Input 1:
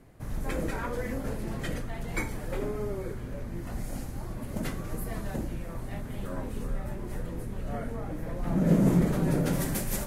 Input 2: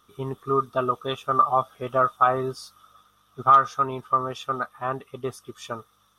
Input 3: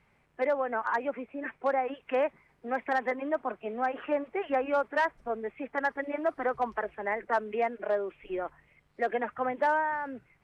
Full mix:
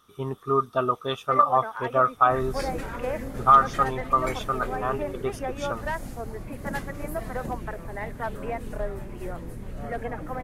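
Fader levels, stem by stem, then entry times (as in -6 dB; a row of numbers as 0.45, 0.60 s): -1.5, 0.0, -4.0 dB; 2.10, 0.00, 0.90 s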